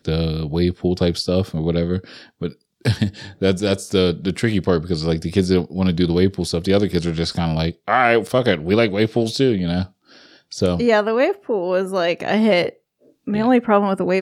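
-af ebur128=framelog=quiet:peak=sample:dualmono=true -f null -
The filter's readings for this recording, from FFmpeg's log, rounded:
Integrated loudness:
  I:         -16.3 LUFS
  Threshold: -26.7 LUFS
Loudness range:
  LRA:         3.1 LU
  Threshold: -36.7 LUFS
  LRA low:   -18.7 LUFS
  LRA high:  -15.5 LUFS
Sample peak:
  Peak:       -1.4 dBFS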